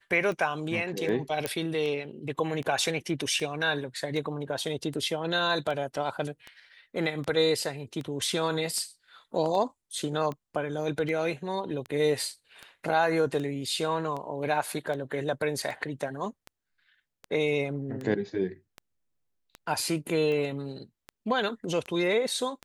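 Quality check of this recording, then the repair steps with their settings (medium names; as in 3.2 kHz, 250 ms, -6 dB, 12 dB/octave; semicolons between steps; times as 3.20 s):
tick 78 rpm -24 dBFS
1.46 s: pop -13 dBFS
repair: de-click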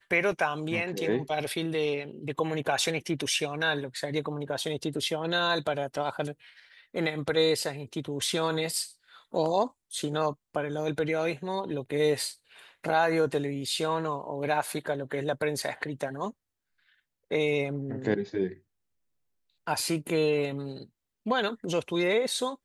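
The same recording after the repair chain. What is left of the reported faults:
nothing left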